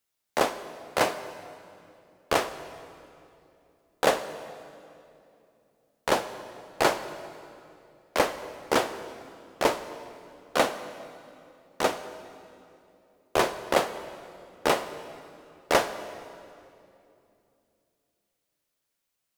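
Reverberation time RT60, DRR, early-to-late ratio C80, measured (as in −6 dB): 2.8 s, 11.0 dB, 12.5 dB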